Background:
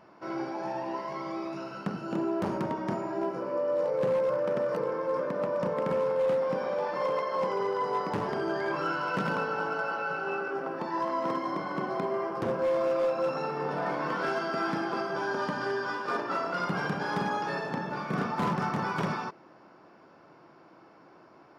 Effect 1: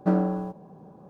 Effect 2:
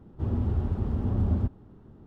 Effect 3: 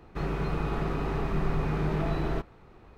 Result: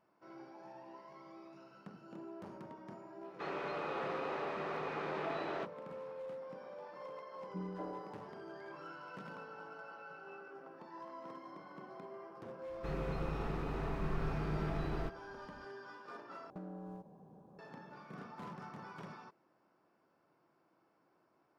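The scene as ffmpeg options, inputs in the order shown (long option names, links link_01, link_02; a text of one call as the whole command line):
ffmpeg -i bed.wav -i cue0.wav -i cue1.wav -i cue2.wav -filter_complex "[3:a]asplit=2[link_01][link_02];[1:a]asplit=2[link_03][link_04];[0:a]volume=-19dB[link_05];[link_01]highpass=460,lowpass=4800[link_06];[link_03]acrossover=split=270|1600[link_07][link_08][link_09];[link_09]adelay=210[link_10];[link_08]adelay=240[link_11];[link_07][link_11][link_10]amix=inputs=3:normalize=0[link_12];[link_04]acompressor=threshold=-29dB:ratio=20:attack=0.26:release=494:knee=1:detection=peak[link_13];[link_05]asplit=2[link_14][link_15];[link_14]atrim=end=16.504[link_16];[link_13]atrim=end=1.09,asetpts=PTS-STARTPTS,volume=-10.5dB[link_17];[link_15]atrim=start=17.586[link_18];[link_06]atrim=end=2.97,asetpts=PTS-STARTPTS,volume=-3.5dB,afade=type=in:duration=0.004:curve=hsin,afade=type=out:start_time=2.966:duration=0.004:curve=hsin,adelay=3240[link_19];[link_12]atrim=end=1.09,asetpts=PTS-STARTPTS,volume=-17.5dB,afade=type=in:duration=0.004:curve=hsin,afade=type=out:start_time=1.086:duration=0.004:curve=hsin,adelay=7480[link_20];[link_02]atrim=end=2.97,asetpts=PTS-STARTPTS,volume=-9dB,afade=type=in:duration=0.004:curve=hsin,afade=type=out:start_time=2.966:duration=0.004:curve=hsin,adelay=559188S[link_21];[link_16][link_17]acrossfade=duration=0.004:curve1=hsin:curve2=hsin[link_22];[link_22][link_18]acrossfade=duration=0.004:curve1=hsin:curve2=hsin[link_23];[link_23][link_19][link_20][link_21]amix=inputs=4:normalize=0" out.wav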